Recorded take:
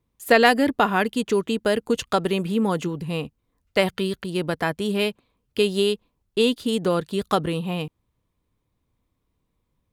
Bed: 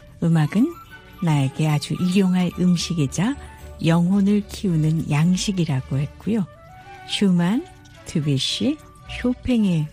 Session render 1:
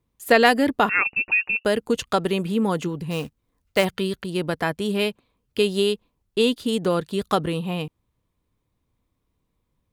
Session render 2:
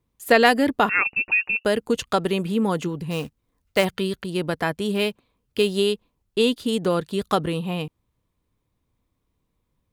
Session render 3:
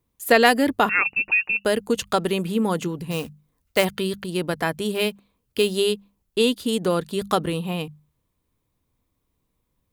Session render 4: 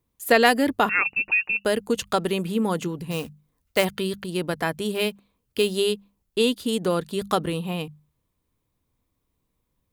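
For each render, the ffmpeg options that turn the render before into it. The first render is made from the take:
-filter_complex "[0:a]asettb=1/sr,asplit=3[a][b][c];[a]atrim=end=0.894[d];[b]atrim=start=0.89:end=1.65,asetpts=PTS-STARTPTS,afade=t=in:d=0.004:c=qsin,afade=t=out:st=0.756:d=0.004:c=qsin,lowpass=f=2.5k:t=q:w=0.5098,lowpass=f=2.5k:t=q:w=0.6013,lowpass=f=2.5k:t=q:w=0.9,lowpass=f=2.5k:t=q:w=2.563,afreqshift=-2900[e];[c]atrim=start=1.646[f];[d][e]acrossfade=d=0.004:c1=hsin:c2=qsin[g];[g][f]acrossfade=d=0.004:c1=qsin:c2=hsin,asettb=1/sr,asplit=3[h][i][j];[h]atrim=end=3.114[k];[i]atrim=start=3.11:end=3.85,asetpts=PTS-STARTPTS,afade=t=in:d=0.004:c=qsin,afade=t=out:st=0.736:d=0.004:c=qsin,acrusher=bits=4:mode=log:mix=0:aa=0.000001[l];[j]atrim=start=3.846[m];[k][l]acrossfade=d=0.004:c1=hsin:c2=qsin[n];[n][m]acrossfade=d=0.004:c1=qsin:c2=hsin"
-filter_complex "[0:a]asettb=1/sr,asplit=3[a][b][c];[a]atrim=end=4.954[d];[b]atrim=start=4.95:end=5.71,asetpts=PTS-STARTPTS,afade=t=in:d=0.004:c=qsin,afade=t=out:st=0.756:d=0.004:c=qsin,acrusher=bits=8:mode=log:mix=0:aa=0.000001[e];[c]atrim=start=5.706[f];[d][e]acrossfade=d=0.004:c1=hsin:c2=qsin[g];[g][f]acrossfade=d=0.004:c1=qsin:c2=hsin"
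-af "highshelf=f=8.7k:g=8,bandreject=f=50:t=h:w=6,bandreject=f=100:t=h:w=6,bandreject=f=150:t=h:w=6,bandreject=f=200:t=h:w=6"
-af "volume=-1.5dB"

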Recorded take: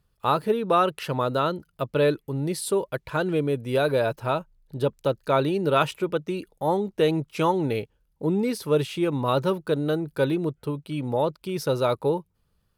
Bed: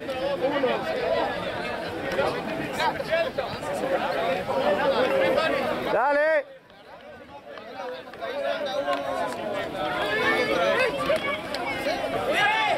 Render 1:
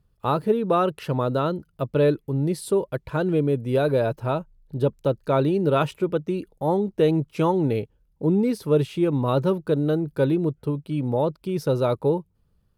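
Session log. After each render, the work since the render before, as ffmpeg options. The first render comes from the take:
-af "tiltshelf=f=670:g=5"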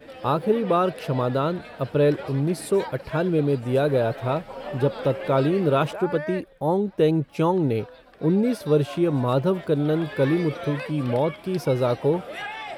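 -filter_complex "[1:a]volume=-11.5dB[a];[0:a][a]amix=inputs=2:normalize=0"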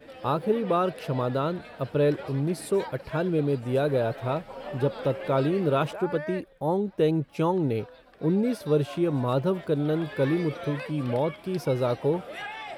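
-af "volume=-3.5dB"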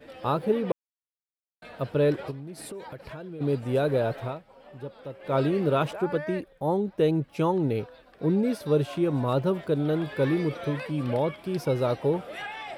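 -filter_complex "[0:a]asplit=3[a][b][c];[a]afade=t=out:st=2.3:d=0.02[d];[b]acompressor=threshold=-36dB:ratio=8:attack=3.2:release=140:knee=1:detection=peak,afade=t=in:st=2.3:d=0.02,afade=t=out:st=3.4:d=0.02[e];[c]afade=t=in:st=3.4:d=0.02[f];[d][e][f]amix=inputs=3:normalize=0,asplit=5[g][h][i][j][k];[g]atrim=end=0.72,asetpts=PTS-STARTPTS,afade=t=out:st=0.716:d=0.004:c=hsin[l];[h]atrim=start=0.72:end=1.62,asetpts=PTS-STARTPTS,volume=0[m];[i]atrim=start=1.62:end=4.42,asetpts=PTS-STARTPTS,afade=t=in:d=0.004:c=hsin,afade=t=out:st=2.61:d=0.19:c=qua:silence=0.223872[n];[j]atrim=start=4.42:end=5.16,asetpts=PTS-STARTPTS,volume=-13dB[o];[k]atrim=start=5.16,asetpts=PTS-STARTPTS,afade=t=in:d=0.19:c=qua:silence=0.223872[p];[l][m][n][o][p]concat=n=5:v=0:a=1"

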